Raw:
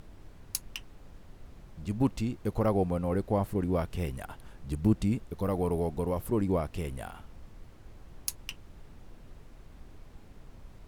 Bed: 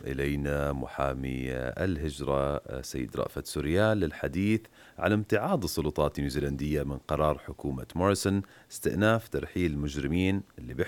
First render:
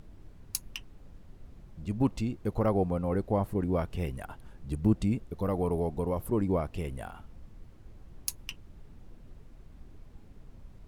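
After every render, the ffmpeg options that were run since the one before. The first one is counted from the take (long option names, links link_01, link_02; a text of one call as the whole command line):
ffmpeg -i in.wav -af "afftdn=noise_reduction=6:noise_floor=-52" out.wav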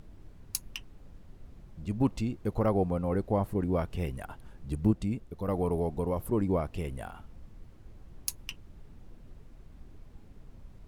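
ffmpeg -i in.wav -filter_complex "[0:a]asplit=3[link_01][link_02][link_03];[link_01]atrim=end=4.912[link_04];[link_02]atrim=start=4.908:end=5.482,asetpts=PTS-STARTPTS,volume=-3.5dB[link_05];[link_03]atrim=start=5.478[link_06];[link_04][link_05]acrossfade=duration=0.004:curve1=hsin:curve2=hsin[link_07];[link_07][link_06]acrossfade=duration=0.004:curve1=hsin:curve2=hsin" out.wav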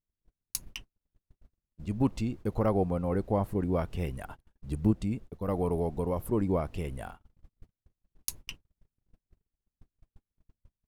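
ffmpeg -i in.wav -af "agate=range=-43dB:threshold=-42dB:ratio=16:detection=peak" out.wav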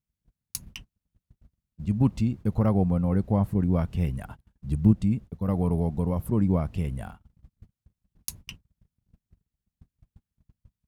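ffmpeg -i in.wav -af "highpass=47,lowshelf=frequency=260:width_type=q:width=1.5:gain=7" out.wav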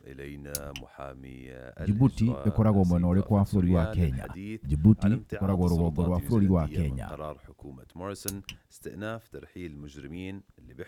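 ffmpeg -i in.wav -i bed.wav -filter_complex "[1:a]volume=-11.5dB[link_01];[0:a][link_01]amix=inputs=2:normalize=0" out.wav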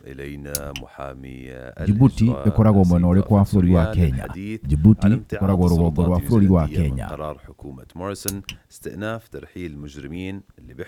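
ffmpeg -i in.wav -af "volume=8dB,alimiter=limit=-1dB:level=0:latency=1" out.wav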